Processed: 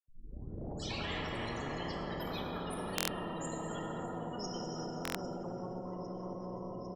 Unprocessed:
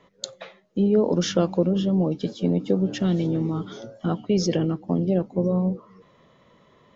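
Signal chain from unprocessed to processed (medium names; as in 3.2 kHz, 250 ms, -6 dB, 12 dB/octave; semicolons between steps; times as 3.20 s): tape start-up on the opening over 1.94 s; bass shelf 330 Hz +9.5 dB; loudest bins only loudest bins 16; on a send: feedback delay 802 ms, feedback 40%, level -23 dB; on the sum: plate-style reverb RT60 4.2 s, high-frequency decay 0.55×, DRR 0 dB; reverse; compression 6:1, threshold -23 dBFS, peak gain reduction 19.5 dB; reverse; phase dispersion lows, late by 87 ms, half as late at 1.2 kHz; ever faster or slower copies 119 ms, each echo +5 st, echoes 3, each echo -6 dB; buffer glitch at 2.96/5.03 s, samples 1024, times 4; spectrum-flattening compressor 4:1; trim -1 dB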